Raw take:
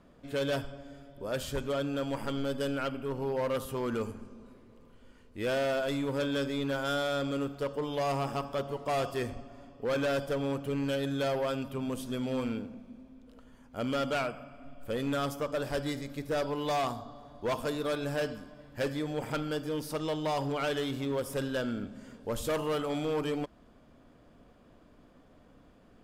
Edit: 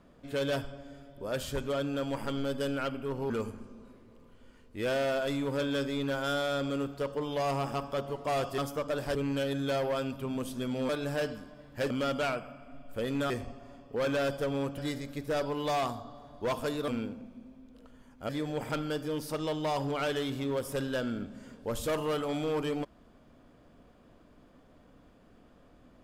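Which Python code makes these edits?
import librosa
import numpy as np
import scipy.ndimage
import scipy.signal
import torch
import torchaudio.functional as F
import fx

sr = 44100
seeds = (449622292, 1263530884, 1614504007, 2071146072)

y = fx.edit(x, sr, fx.cut(start_s=3.3, length_s=0.61),
    fx.swap(start_s=9.19, length_s=1.48, other_s=15.22, other_length_s=0.57),
    fx.swap(start_s=12.41, length_s=1.41, other_s=17.89, other_length_s=1.01), tone=tone)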